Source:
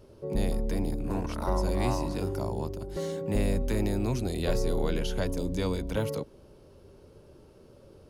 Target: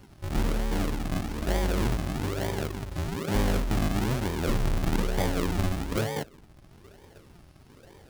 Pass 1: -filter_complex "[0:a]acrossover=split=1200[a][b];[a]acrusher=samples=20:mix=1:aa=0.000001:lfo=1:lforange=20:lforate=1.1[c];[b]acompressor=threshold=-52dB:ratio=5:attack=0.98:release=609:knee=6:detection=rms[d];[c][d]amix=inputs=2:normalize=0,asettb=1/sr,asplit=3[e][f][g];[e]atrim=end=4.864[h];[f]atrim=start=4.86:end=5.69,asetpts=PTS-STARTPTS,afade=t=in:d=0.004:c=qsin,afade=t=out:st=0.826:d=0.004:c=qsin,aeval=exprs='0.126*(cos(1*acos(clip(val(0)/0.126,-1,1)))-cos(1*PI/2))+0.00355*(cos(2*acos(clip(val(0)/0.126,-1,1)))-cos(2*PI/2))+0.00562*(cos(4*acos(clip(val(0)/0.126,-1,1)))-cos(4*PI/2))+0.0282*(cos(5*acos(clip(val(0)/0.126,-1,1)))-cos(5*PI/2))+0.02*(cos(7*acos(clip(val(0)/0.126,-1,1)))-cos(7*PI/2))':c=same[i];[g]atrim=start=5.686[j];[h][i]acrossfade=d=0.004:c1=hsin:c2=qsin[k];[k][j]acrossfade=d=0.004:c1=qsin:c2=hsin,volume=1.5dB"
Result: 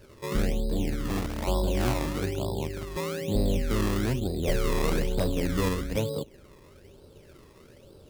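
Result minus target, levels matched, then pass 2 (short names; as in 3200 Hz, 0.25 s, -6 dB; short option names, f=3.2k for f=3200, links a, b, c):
decimation with a swept rate: distortion -9 dB
-filter_complex "[0:a]acrossover=split=1200[a][b];[a]acrusher=samples=64:mix=1:aa=0.000001:lfo=1:lforange=64:lforate=1.1[c];[b]acompressor=threshold=-52dB:ratio=5:attack=0.98:release=609:knee=6:detection=rms[d];[c][d]amix=inputs=2:normalize=0,asettb=1/sr,asplit=3[e][f][g];[e]atrim=end=4.864[h];[f]atrim=start=4.86:end=5.69,asetpts=PTS-STARTPTS,afade=t=in:d=0.004:c=qsin,afade=t=out:st=0.826:d=0.004:c=qsin,aeval=exprs='0.126*(cos(1*acos(clip(val(0)/0.126,-1,1)))-cos(1*PI/2))+0.00355*(cos(2*acos(clip(val(0)/0.126,-1,1)))-cos(2*PI/2))+0.00562*(cos(4*acos(clip(val(0)/0.126,-1,1)))-cos(4*PI/2))+0.0282*(cos(5*acos(clip(val(0)/0.126,-1,1)))-cos(5*PI/2))+0.02*(cos(7*acos(clip(val(0)/0.126,-1,1)))-cos(7*PI/2))':c=same[i];[g]atrim=start=5.686[j];[h][i]acrossfade=d=0.004:c1=hsin:c2=qsin[k];[k][j]acrossfade=d=0.004:c1=qsin:c2=hsin,volume=1.5dB"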